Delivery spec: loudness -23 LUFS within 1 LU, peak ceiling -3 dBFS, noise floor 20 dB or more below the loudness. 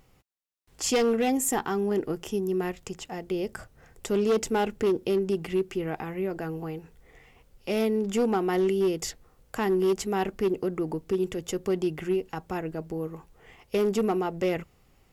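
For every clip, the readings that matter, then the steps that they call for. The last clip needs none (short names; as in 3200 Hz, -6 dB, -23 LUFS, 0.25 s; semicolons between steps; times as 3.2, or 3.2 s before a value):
clipped 1.3%; flat tops at -19.0 dBFS; loudness -28.0 LUFS; peak -19.0 dBFS; loudness target -23.0 LUFS
-> clip repair -19 dBFS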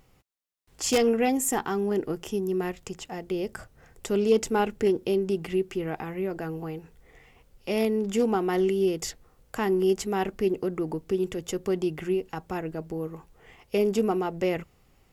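clipped 0.0%; loudness -27.5 LUFS; peak -10.0 dBFS; loudness target -23.0 LUFS
-> gain +4.5 dB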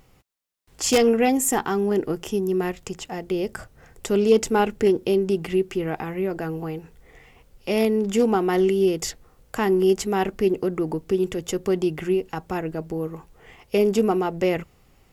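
loudness -23.0 LUFS; peak -5.5 dBFS; noise floor -58 dBFS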